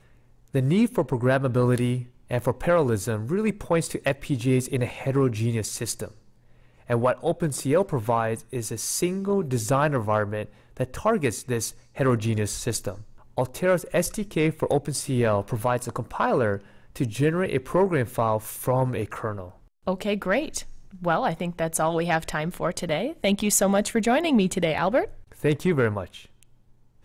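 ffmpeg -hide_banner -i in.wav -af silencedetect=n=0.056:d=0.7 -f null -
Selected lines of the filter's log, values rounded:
silence_start: 6.04
silence_end: 6.90 | silence_duration: 0.86
silence_start: 26.03
silence_end: 27.04 | silence_duration: 1.01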